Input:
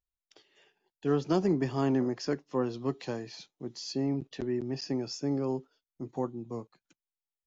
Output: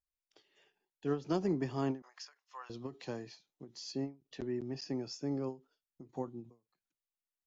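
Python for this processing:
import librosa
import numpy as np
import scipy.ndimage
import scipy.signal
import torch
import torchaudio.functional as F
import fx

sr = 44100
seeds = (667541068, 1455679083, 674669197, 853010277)

y = fx.highpass(x, sr, hz=960.0, slope=24, at=(2.02, 2.7))
y = fx.end_taper(y, sr, db_per_s=220.0)
y = y * 10.0 ** (-5.5 / 20.0)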